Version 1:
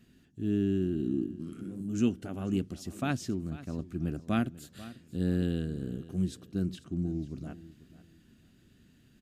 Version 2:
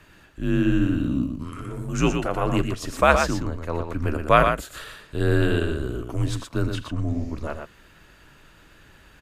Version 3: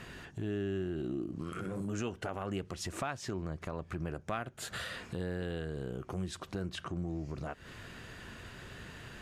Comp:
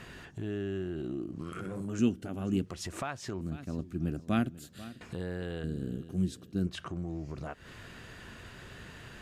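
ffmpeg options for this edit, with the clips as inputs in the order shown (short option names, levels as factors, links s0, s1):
-filter_complex "[0:a]asplit=3[s0][s1][s2];[2:a]asplit=4[s3][s4][s5][s6];[s3]atrim=end=1.992[s7];[s0]atrim=start=1.988:end=2.662[s8];[s4]atrim=start=2.658:end=3.412[s9];[s1]atrim=start=3.408:end=5.012[s10];[s5]atrim=start=5.008:end=5.642[s11];[s2]atrim=start=5.638:end=6.672[s12];[s6]atrim=start=6.668[s13];[s7][s8]acrossfade=d=0.004:c1=hsin:c2=hsin[s14];[s14][s9]acrossfade=d=0.004:c1=hsin:c2=hsin[s15];[s15][s10]acrossfade=d=0.004:c1=hsin:c2=hsin[s16];[s16][s11]acrossfade=d=0.004:c1=hsin:c2=hsin[s17];[s17][s12]acrossfade=d=0.004:c1=hsin:c2=hsin[s18];[s18][s13]acrossfade=d=0.004:c1=hsin:c2=hsin"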